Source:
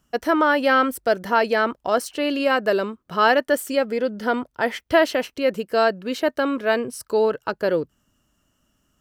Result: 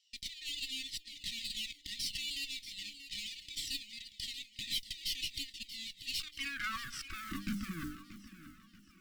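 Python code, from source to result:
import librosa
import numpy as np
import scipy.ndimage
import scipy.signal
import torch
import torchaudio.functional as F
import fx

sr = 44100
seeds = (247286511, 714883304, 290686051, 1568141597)

y = fx.lower_of_two(x, sr, delay_ms=0.39)
y = scipy.signal.sosfilt(scipy.signal.butter(4, 6400.0, 'lowpass', fs=sr, output='sos'), y)
y = fx.peak_eq(y, sr, hz=180.0, db=9.0, octaves=0.3)
y = fx.hum_notches(y, sr, base_hz=50, count=6)
y = fx.over_compress(y, sr, threshold_db=-28.0, ratio=-1.0)
y = fx.filter_sweep_highpass(y, sr, from_hz=3800.0, to_hz=240.0, start_s=6.24, end_s=7.4, q=4.6)
y = fx.mod_noise(y, sr, seeds[0], snr_db=22)
y = fx.tube_stage(y, sr, drive_db=31.0, bias=0.75)
y = fx.brickwall_bandstop(y, sr, low_hz=350.0, high_hz=fx.steps((0.0, 1800.0), (6.19, 1100.0)))
y = fx.echo_feedback(y, sr, ms=633, feedback_pct=40, wet_db=-13.0)
y = fx.comb_cascade(y, sr, direction='falling', hz=1.1)
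y = F.gain(torch.from_numpy(y), 2.5).numpy()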